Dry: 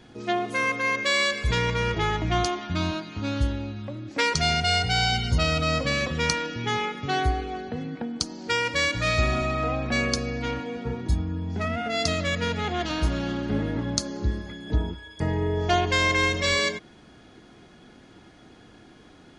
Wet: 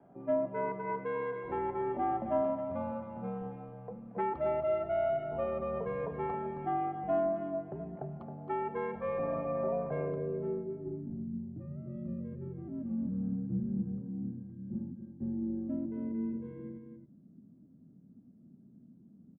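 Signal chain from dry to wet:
single-sideband voice off tune −87 Hz 230–3,100 Hz
single-tap delay 269 ms −9 dB
low-pass filter sweep 760 Hz → 220 Hz, 0:09.86–0:11.33
level −8.5 dB

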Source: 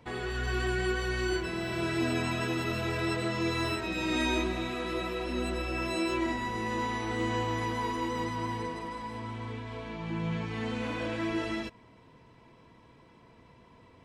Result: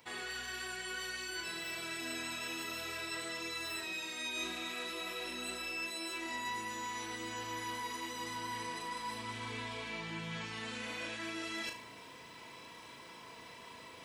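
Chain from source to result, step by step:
spectral tilt +4 dB per octave
reversed playback
downward compressor 10 to 1, threshold −46 dBFS, peak gain reduction 21.5 dB
reversed playback
flutter between parallel walls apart 6.3 metres, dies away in 0.36 s
level +6 dB

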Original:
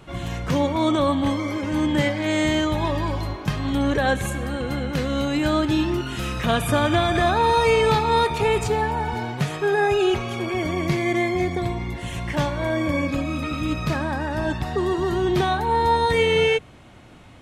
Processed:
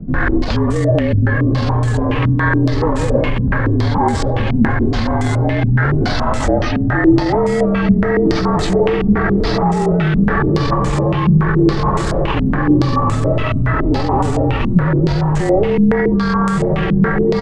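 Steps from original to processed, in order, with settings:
frequency shifter −76 Hz
repeating echo 588 ms, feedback 45%, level −15.5 dB
in parallel at −11 dB: bit reduction 5 bits
on the sum: feedback delay with all-pass diffusion 1,507 ms, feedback 51%, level −7.5 dB
pitch shifter −11 semitones
reversed playback
upward compression, threshold −13 dBFS
reversed playback
boost into a limiter +16.5 dB
low-pass on a step sequencer 7.1 Hz 210–7,800 Hz
level −8 dB

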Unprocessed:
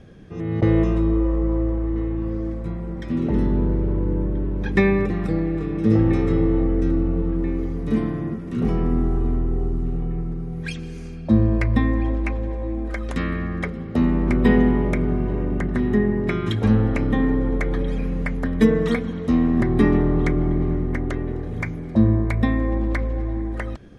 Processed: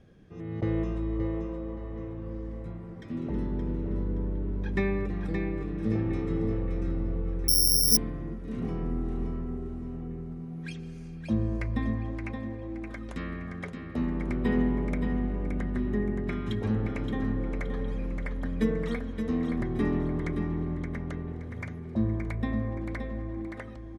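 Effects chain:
repeating echo 572 ms, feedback 33%, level −6.5 dB
0:07.48–0:07.97: bad sample-rate conversion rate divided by 8×, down none, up zero stuff
level −11 dB

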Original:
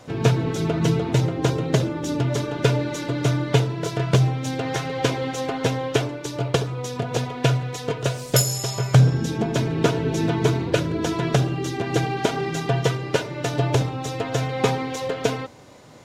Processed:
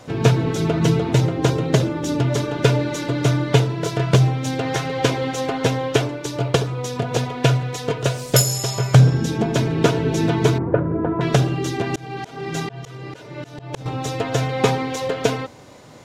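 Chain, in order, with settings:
0:10.58–0:11.21: low-pass filter 1,400 Hz 24 dB per octave
0:11.91–0:13.86: volume swells 386 ms
level +3 dB

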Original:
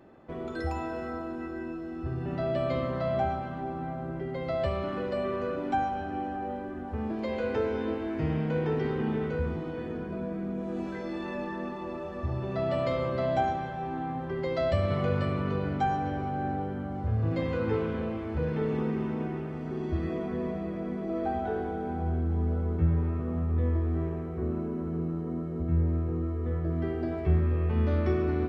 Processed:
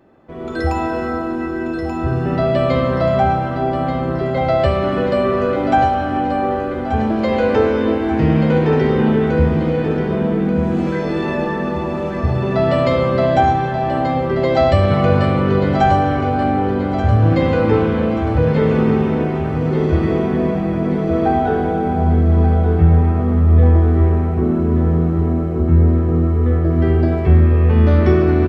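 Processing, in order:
automatic gain control gain up to 12 dB
repeating echo 1,183 ms, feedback 48%, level −8 dB
on a send at −18 dB: convolution reverb RT60 0.60 s, pre-delay 65 ms
on the sum: level +2 dB

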